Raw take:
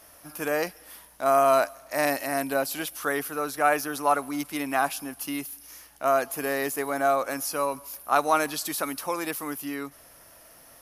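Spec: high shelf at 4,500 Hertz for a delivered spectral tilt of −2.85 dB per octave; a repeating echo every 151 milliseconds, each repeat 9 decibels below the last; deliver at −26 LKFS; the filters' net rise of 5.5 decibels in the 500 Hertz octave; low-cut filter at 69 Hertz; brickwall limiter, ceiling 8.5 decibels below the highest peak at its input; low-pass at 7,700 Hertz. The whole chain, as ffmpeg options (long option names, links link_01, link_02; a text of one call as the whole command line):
ffmpeg -i in.wav -af "highpass=69,lowpass=7700,equalizer=frequency=500:width_type=o:gain=7.5,highshelf=frequency=4500:gain=7.5,alimiter=limit=-14dB:level=0:latency=1,aecho=1:1:151|302|453|604:0.355|0.124|0.0435|0.0152,volume=-0.5dB" out.wav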